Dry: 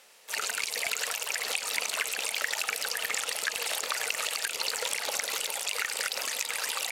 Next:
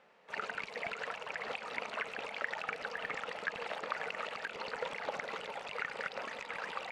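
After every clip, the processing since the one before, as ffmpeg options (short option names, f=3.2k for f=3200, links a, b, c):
-af "lowpass=1.6k,equalizer=f=170:w=1.8:g=10,volume=-1.5dB"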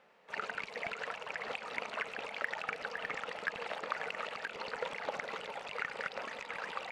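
-af "aeval=exprs='0.119*(cos(1*acos(clip(val(0)/0.119,-1,1)))-cos(1*PI/2))+0.00266*(cos(7*acos(clip(val(0)/0.119,-1,1)))-cos(7*PI/2))':c=same,volume=1dB"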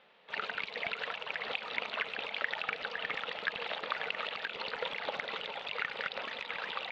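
-af "lowpass=f=3.6k:t=q:w=3.4"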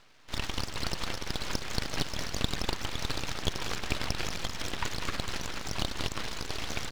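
-filter_complex "[0:a]aeval=exprs='abs(val(0))':c=same,asplit=2[a][b];[b]aecho=0:1:200:0.266[c];[a][c]amix=inputs=2:normalize=0,volume=5.5dB"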